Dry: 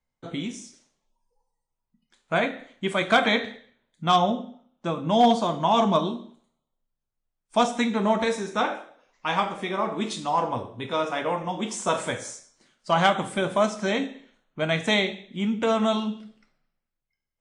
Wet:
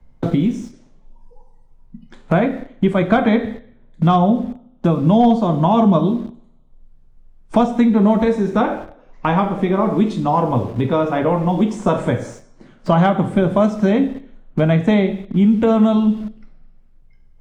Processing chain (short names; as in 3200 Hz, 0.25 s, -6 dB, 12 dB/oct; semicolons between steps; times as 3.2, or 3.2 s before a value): in parallel at -4 dB: bit-crush 7-bit; on the sum: tilt -4.5 dB/oct; three-band squash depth 70%; gain -1 dB